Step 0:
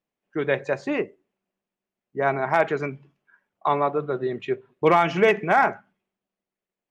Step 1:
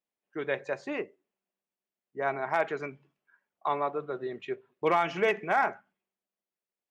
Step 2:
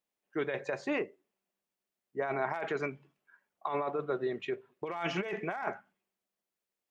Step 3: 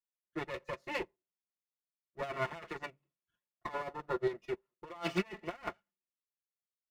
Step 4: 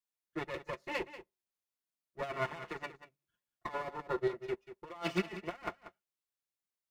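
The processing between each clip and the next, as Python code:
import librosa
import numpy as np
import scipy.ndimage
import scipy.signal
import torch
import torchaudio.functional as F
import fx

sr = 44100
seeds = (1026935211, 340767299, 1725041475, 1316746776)

y1 = fx.low_shelf(x, sr, hz=200.0, db=-10.5)
y1 = y1 * librosa.db_to_amplitude(-6.5)
y2 = fx.over_compress(y1, sr, threshold_db=-32.0, ratio=-1.0)
y2 = y2 * librosa.db_to_amplitude(-1.0)
y3 = fx.lower_of_two(y2, sr, delay_ms=5.7)
y3 = fx.notch_comb(y3, sr, f0_hz=790.0)
y3 = fx.upward_expand(y3, sr, threshold_db=-46.0, expansion=2.5)
y3 = y3 * librosa.db_to_amplitude(4.5)
y4 = y3 + 10.0 ** (-13.5 / 20.0) * np.pad(y3, (int(187 * sr / 1000.0), 0))[:len(y3)]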